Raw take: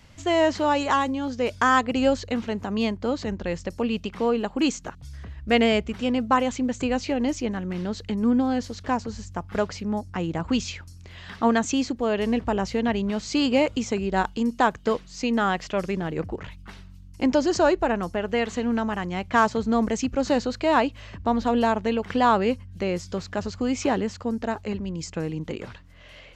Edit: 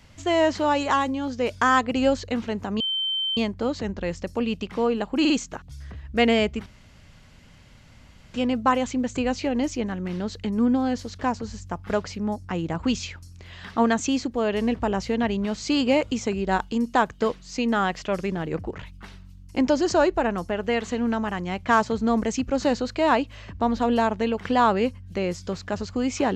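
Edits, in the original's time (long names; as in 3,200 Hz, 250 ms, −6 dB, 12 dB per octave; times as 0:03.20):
0:02.80: insert tone 3,100 Hz −23 dBFS 0.57 s
0:04.63: stutter 0.05 s, 3 plays
0:05.99: splice in room tone 1.68 s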